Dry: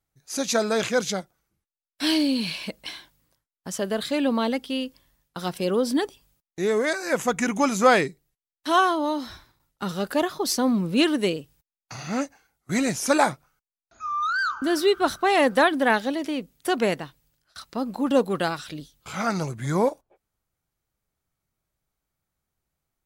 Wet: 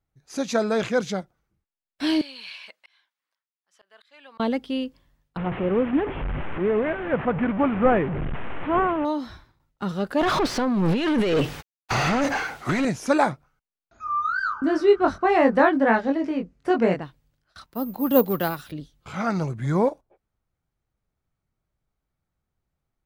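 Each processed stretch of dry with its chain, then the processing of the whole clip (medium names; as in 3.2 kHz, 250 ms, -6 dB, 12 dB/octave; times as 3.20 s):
2.21–4.40 s: high-pass 1.4 kHz + treble shelf 5.4 kHz -8.5 dB + slow attack 635 ms
5.37–9.05 s: one-bit delta coder 16 kbps, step -23 dBFS + low-pass 1.6 kHz 6 dB/octave
10.21–12.85 s: companding laws mixed up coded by mu + compressor with a negative ratio -33 dBFS + overdrive pedal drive 32 dB, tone 3.7 kHz, clips at -13.5 dBFS
14.04–17.02 s: low-pass 5.6 kHz + peaking EQ 3.5 kHz -10.5 dB 0.59 oct + doubling 22 ms -3.5 dB
17.66–18.72 s: careless resampling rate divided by 3×, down none, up zero stuff + three bands expanded up and down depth 40%
whole clip: low-pass 2.3 kHz 6 dB/octave; bass shelf 210 Hz +4.5 dB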